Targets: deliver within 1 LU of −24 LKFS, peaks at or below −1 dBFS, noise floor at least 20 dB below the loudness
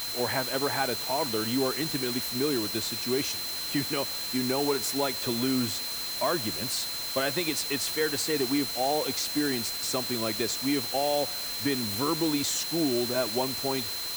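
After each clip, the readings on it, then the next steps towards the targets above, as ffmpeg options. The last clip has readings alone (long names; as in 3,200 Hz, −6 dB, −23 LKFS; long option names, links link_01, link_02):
interfering tone 4,100 Hz; level of the tone −34 dBFS; background noise floor −34 dBFS; target noise floor −48 dBFS; integrated loudness −27.5 LKFS; sample peak −13.0 dBFS; target loudness −24.0 LKFS
→ -af "bandreject=frequency=4100:width=30"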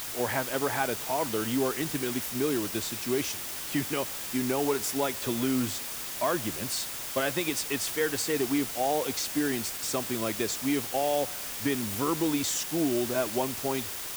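interfering tone none found; background noise floor −37 dBFS; target noise floor −49 dBFS
→ -af "afftdn=noise_reduction=12:noise_floor=-37"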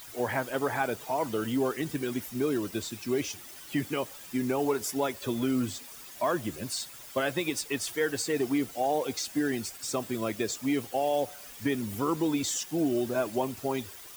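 background noise floor −47 dBFS; target noise floor −51 dBFS
→ -af "afftdn=noise_reduction=6:noise_floor=-47"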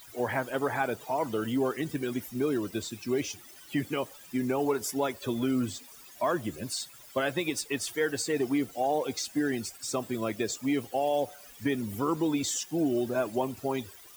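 background noise floor −51 dBFS; integrated loudness −31.0 LKFS; sample peak −15.0 dBFS; target loudness −24.0 LKFS
→ -af "volume=7dB"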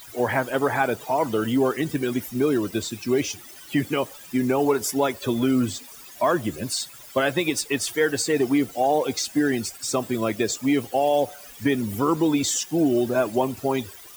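integrated loudness −24.0 LKFS; sample peak −8.0 dBFS; background noise floor −44 dBFS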